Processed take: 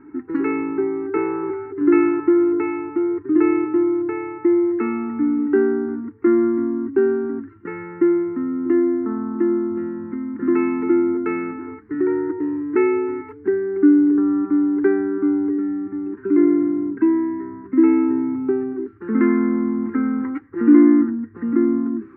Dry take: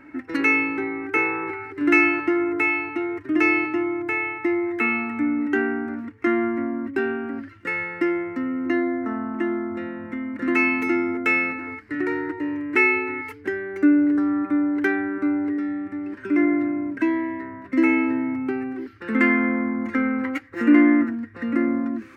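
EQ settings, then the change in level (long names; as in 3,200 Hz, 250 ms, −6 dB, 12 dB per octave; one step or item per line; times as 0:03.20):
drawn EQ curve 110 Hz 0 dB, 190 Hz +6 dB, 270 Hz +2 dB, 410 Hz +10 dB, 580 Hz −21 dB, 820 Hz −1 dB, 1,300 Hz −2 dB, 3,200 Hz −23 dB, 5,700 Hz −29 dB
0.0 dB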